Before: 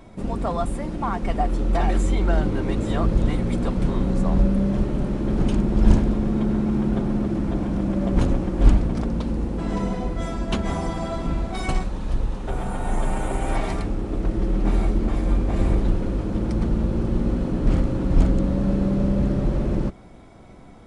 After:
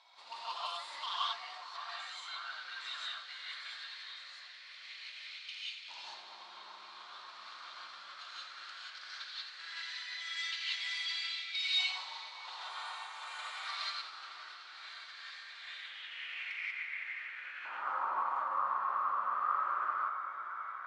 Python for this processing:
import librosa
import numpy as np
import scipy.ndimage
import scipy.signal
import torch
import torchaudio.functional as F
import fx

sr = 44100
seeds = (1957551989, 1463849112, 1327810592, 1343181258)

p1 = fx.over_compress(x, sr, threshold_db=-26.0, ratio=-0.5)
p2 = x + (p1 * 10.0 ** (1.0 / 20.0))
p3 = fx.filter_lfo_highpass(p2, sr, shape='saw_up', hz=0.17, low_hz=880.0, high_hz=2500.0, q=4.5)
p4 = p3 + fx.echo_split(p3, sr, split_hz=2000.0, low_ms=577, high_ms=85, feedback_pct=52, wet_db=-11, dry=0)
p5 = np.clip(10.0 ** (9.5 / 20.0) * p4, -1.0, 1.0) / 10.0 ** (9.5 / 20.0)
p6 = fx.air_absorb(p5, sr, metres=65.0)
p7 = fx.rev_gated(p6, sr, seeds[0], gate_ms=210, shape='rising', drr_db=-6.5)
p8 = fx.filter_sweep_bandpass(p7, sr, from_hz=4200.0, to_hz=1200.0, start_s=15.48, end_s=18.17, q=4.5)
y = p8 * 10.0 ** (-5.0 / 20.0)